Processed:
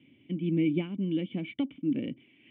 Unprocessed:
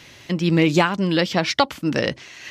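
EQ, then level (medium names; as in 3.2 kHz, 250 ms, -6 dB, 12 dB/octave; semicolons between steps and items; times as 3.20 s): cascade formant filter i; high-pass 120 Hz; distance through air 280 m; 0.0 dB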